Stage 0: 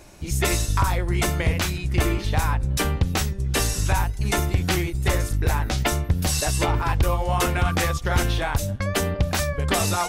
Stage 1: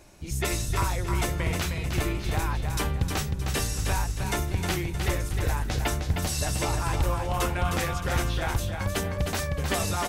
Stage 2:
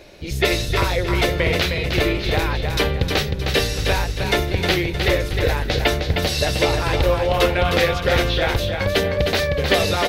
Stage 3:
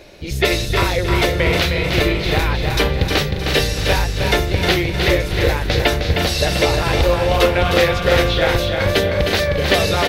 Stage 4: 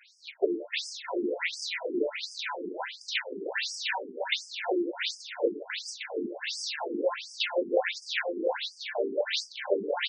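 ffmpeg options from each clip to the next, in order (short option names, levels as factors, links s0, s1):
-af "aecho=1:1:310|620|930|1240:0.531|0.196|0.0727|0.0269,volume=0.501"
-af "equalizer=f=500:t=o:w=1:g=12,equalizer=f=1000:t=o:w=1:g=-4,equalizer=f=2000:t=o:w=1:g=6,equalizer=f=4000:t=o:w=1:g=11,equalizer=f=8000:t=o:w=1:g=-10,volume=1.68"
-af "aecho=1:1:350|700|1050|1400|1750|2100:0.376|0.199|0.106|0.056|0.0297|0.0157,volume=1.26"
-af "asuperstop=centerf=1200:order=4:qfactor=4.7,afftfilt=real='re*between(b*sr/1024,300*pow(6800/300,0.5+0.5*sin(2*PI*1.4*pts/sr))/1.41,300*pow(6800/300,0.5+0.5*sin(2*PI*1.4*pts/sr))*1.41)':imag='im*between(b*sr/1024,300*pow(6800/300,0.5+0.5*sin(2*PI*1.4*pts/sr))/1.41,300*pow(6800/300,0.5+0.5*sin(2*PI*1.4*pts/sr))*1.41)':win_size=1024:overlap=0.75,volume=0.501"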